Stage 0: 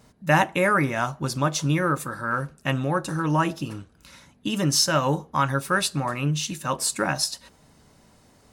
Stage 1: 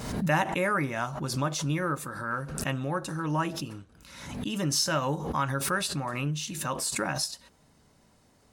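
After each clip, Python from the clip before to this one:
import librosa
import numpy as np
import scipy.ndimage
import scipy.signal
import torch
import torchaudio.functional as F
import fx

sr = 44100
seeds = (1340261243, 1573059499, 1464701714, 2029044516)

y = fx.pre_swell(x, sr, db_per_s=51.0)
y = y * 10.0 ** (-6.5 / 20.0)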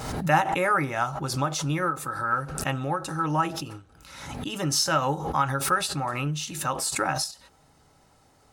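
y = fx.peak_eq(x, sr, hz=210.0, db=-12.5, octaves=0.24)
y = fx.small_body(y, sr, hz=(810.0, 1300.0), ring_ms=45, db=10)
y = fx.end_taper(y, sr, db_per_s=190.0)
y = y * 10.0 ** (2.5 / 20.0)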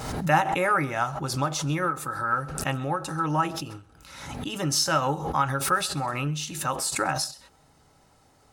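y = x + 10.0 ** (-22.5 / 20.0) * np.pad(x, (int(132 * sr / 1000.0), 0))[:len(x)]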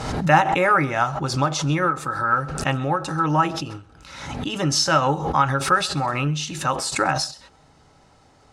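y = scipy.signal.sosfilt(scipy.signal.butter(2, 6600.0, 'lowpass', fs=sr, output='sos'), x)
y = y * 10.0 ** (5.5 / 20.0)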